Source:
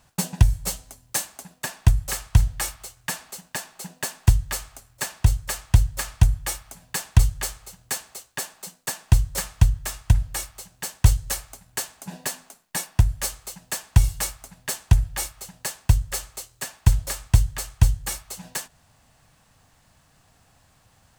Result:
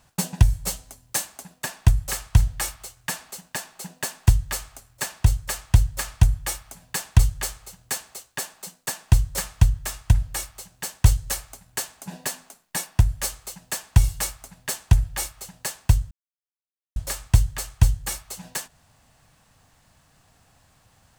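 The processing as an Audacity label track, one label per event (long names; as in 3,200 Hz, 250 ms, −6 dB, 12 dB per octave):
16.110000	16.960000	silence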